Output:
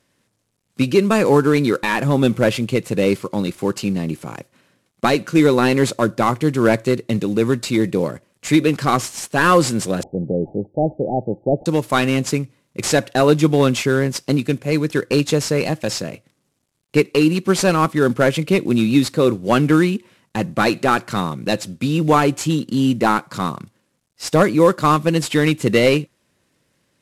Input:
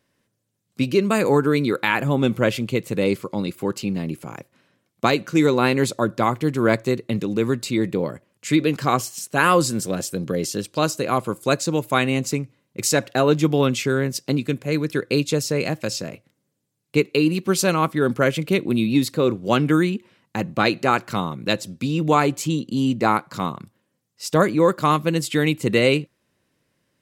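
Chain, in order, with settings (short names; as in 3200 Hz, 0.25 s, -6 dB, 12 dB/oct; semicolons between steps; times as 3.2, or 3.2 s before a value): CVSD 64 kbps; 10.03–11.66 Chebyshev low-pass 860 Hz, order 10; gain +4 dB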